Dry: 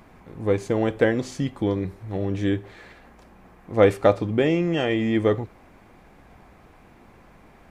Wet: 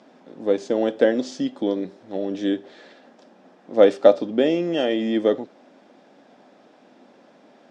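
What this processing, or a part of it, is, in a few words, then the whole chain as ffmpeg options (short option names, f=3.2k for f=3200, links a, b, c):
television speaker: -af "highpass=f=210:w=0.5412,highpass=f=210:w=1.3066,equalizer=f=260:t=q:w=4:g=6,equalizer=f=580:t=q:w=4:g=8,equalizer=f=1.1k:t=q:w=4:g=-6,equalizer=f=2.2k:t=q:w=4:g=-7,equalizer=f=3.5k:t=q:w=4:g=6,equalizer=f=5.2k:t=q:w=4:g=6,lowpass=f=7.4k:w=0.5412,lowpass=f=7.4k:w=1.3066,volume=-1dB"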